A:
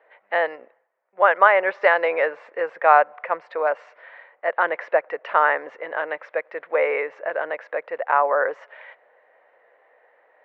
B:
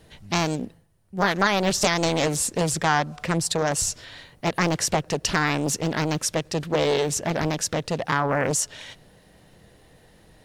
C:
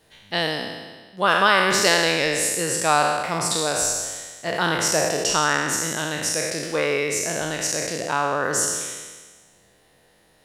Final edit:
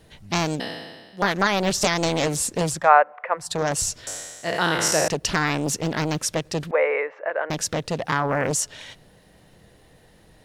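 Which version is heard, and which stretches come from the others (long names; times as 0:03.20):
B
0:00.60–0:01.22: punch in from C
0:02.79–0:03.48: punch in from A, crossfade 0.24 s
0:04.07–0:05.08: punch in from C
0:06.71–0:07.50: punch in from A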